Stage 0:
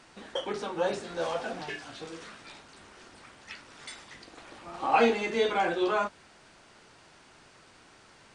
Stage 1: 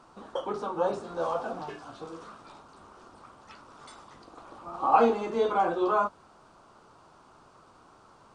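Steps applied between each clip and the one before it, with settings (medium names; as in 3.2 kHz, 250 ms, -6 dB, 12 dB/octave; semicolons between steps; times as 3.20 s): resonant high shelf 1.5 kHz -7.5 dB, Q 3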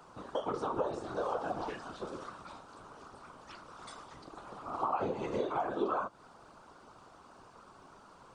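compression 6:1, threshold -31 dBFS, peak gain reduction 15 dB; whisper effect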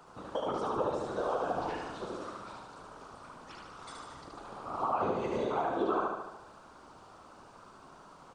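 feedback delay 74 ms, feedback 59%, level -3 dB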